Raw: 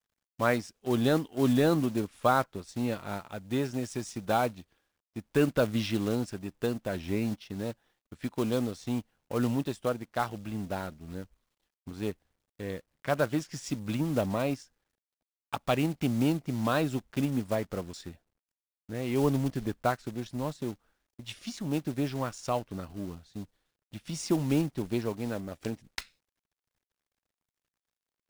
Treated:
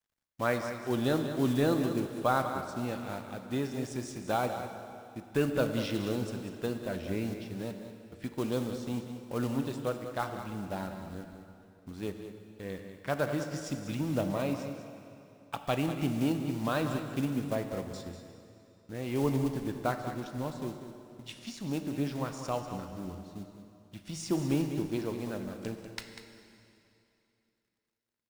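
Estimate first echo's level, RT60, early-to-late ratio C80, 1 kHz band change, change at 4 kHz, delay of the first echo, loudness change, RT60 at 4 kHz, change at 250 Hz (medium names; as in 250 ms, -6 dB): -10.5 dB, 2.8 s, 6.0 dB, -2.5 dB, -2.5 dB, 194 ms, -2.5 dB, 2.6 s, -2.5 dB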